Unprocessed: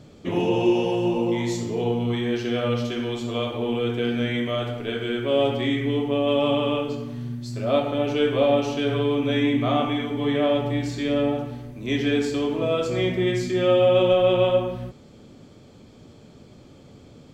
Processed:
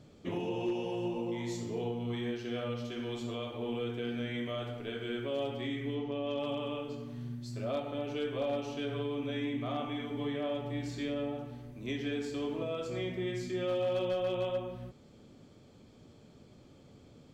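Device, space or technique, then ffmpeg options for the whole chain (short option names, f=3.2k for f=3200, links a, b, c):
clipper into limiter: -filter_complex "[0:a]asoftclip=type=hard:threshold=-12.5dB,alimiter=limit=-17.5dB:level=0:latency=1:release=489,asettb=1/sr,asplit=3[a][b][c];[a]atrim=end=5.954[d];[b]atrim=start=5.95:end=6.39,asetpts=PTS-STARTPTS,afade=t=in:d=0.004:c=qsin,afade=t=out:st=0.436:d=0.004:c=qsin,lowpass=f=6.4k:w=0.5412,lowpass=f=6.4k:w=1.3066[e];[c]atrim=start=6.386[f];[d][e]acrossfade=d=0.004:c1=hsin:c2=qsin[g];[g][f]acrossfade=d=0.004:c1=qsin:c2=hsin,volume=-9dB"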